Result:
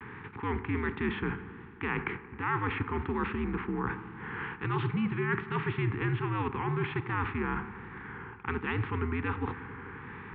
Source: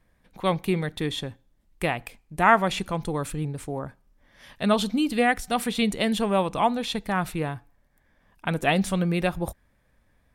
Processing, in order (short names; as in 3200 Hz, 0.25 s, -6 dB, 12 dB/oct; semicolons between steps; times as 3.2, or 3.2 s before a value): per-bin compression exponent 0.6; reverse; compressor 6:1, threshold -30 dBFS, peak gain reduction 18 dB; reverse; mistuned SSB -86 Hz 170–2600 Hz; vibrato 1.3 Hz 90 cents; Chebyshev band-stop 400–940 Hz, order 2; dark delay 89 ms, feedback 83%, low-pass 1800 Hz, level -17 dB; gain +4 dB